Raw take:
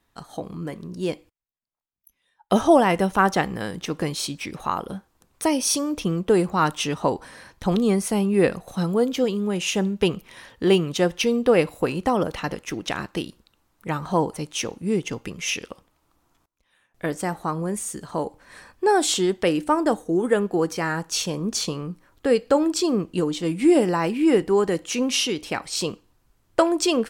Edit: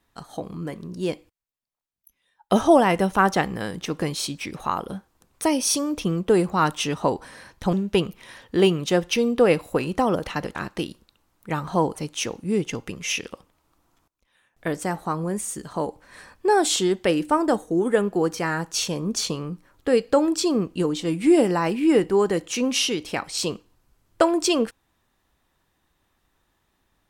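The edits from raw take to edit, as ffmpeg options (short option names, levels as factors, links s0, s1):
-filter_complex "[0:a]asplit=3[s0][s1][s2];[s0]atrim=end=7.732[s3];[s1]atrim=start=9.808:end=12.632[s4];[s2]atrim=start=12.928[s5];[s3][s4]acrossfade=d=0.004:c1=hsin:c2=hsin[s6];[s6][s5]acrossfade=d=0.004:c1=hsin:c2=hsin"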